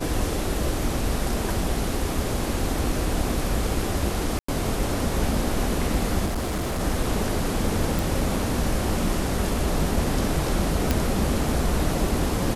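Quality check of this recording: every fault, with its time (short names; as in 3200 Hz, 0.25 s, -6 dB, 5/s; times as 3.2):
4.39–4.48 gap 94 ms
6.25–6.81 clipped -23 dBFS
7.99 pop
10.91 pop -6 dBFS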